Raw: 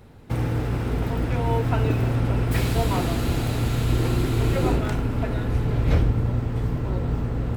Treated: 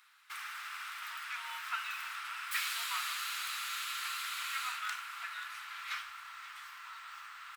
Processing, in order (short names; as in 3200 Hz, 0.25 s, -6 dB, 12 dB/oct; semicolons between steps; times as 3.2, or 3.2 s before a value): elliptic high-pass 1200 Hz, stop band 60 dB; on a send: echo 0.534 s -16 dB; on the sum: gain -1.5 dB